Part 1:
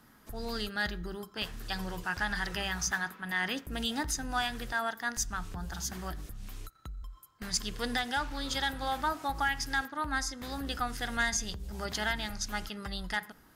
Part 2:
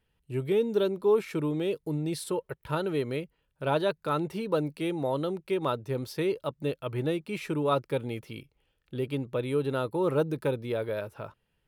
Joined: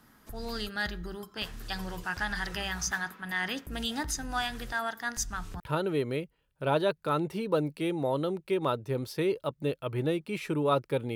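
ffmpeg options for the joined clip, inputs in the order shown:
ffmpeg -i cue0.wav -i cue1.wav -filter_complex "[0:a]apad=whole_dur=11.15,atrim=end=11.15,atrim=end=5.602[link_01];[1:a]atrim=start=2.598:end=8.15[link_02];[link_01][link_02]acrossfade=duration=0.004:curve1=hsin:curve2=hsin" out.wav

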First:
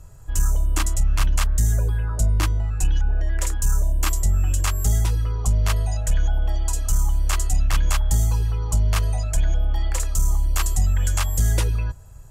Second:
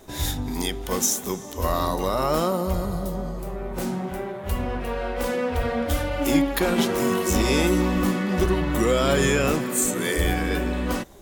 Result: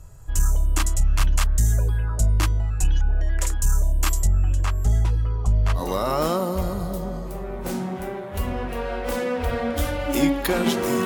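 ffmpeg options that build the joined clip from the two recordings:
ffmpeg -i cue0.wav -i cue1.wav -filter_complex "[0:a]asettb=1/sr,asplit=3[link_01][link_02][link_03];[link_01]atrim=end=4.274[link_04];[link_02]atrim=start=4.27:end=5.84,asetpts=PTS-STARTPTS,afade=type=in:duration=0.004:curve=qsin,afade=type=out:start_time=1.566:duration=0.004:curve=qsin,lowpass=frequency=1700:poles=1[link_05];[link_03]atrim=start=5.836[link_06];[link_04][link_05]acrossfade=duration=0.004:curve1=hsin:curve2=qsin[link_07];[link_07][link_06]acrossfade=duration=0.004:curve1=qsin:curve2=hsin,apad=whole_dur=11.05,atrim=end=11.05,atrim=end=5.84,asetpts=PTS-STARTPTS[link_08];[1:a]atrim=start=1.86:end=7.17,asetpts=PTS-STARTPTS[link_09];[link_08][link_09]acrossfade=duration=0.1:curve1=tri:curve2=tri" out.wav

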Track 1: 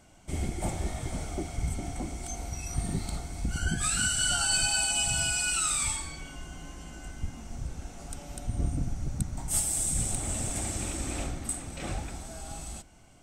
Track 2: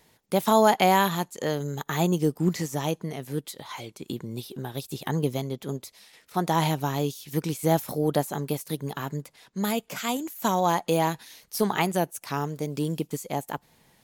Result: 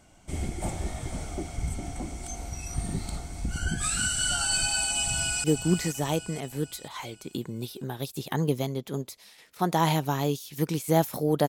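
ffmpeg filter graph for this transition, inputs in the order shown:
ffmpeg -i cue0.wav -i cue1.wav -filter_complex "[0:a]apad=whole_dur=11.48,atrim=end=11.48,atrim=end=5.442[link_01];[1:a]atrim=start=2.188:end=8.23[link_02];[link_01][link_02]acrossfade=duration=0.004:curve1=hsin:curve2=hsin,asplit=2[link_03][link_04];[link_04]afade=type=in:start_time=4.98:duration=0.01,afade=type=out:start_time=5.44:duration=0.01,aecho=0:1:480|960|1440|1920|2400:0.398107|0.179148|0.0806167|0.0362775|0.0163249[link_05];[link_03][link_05]amix=inputs=2:normalize=0" out.wav

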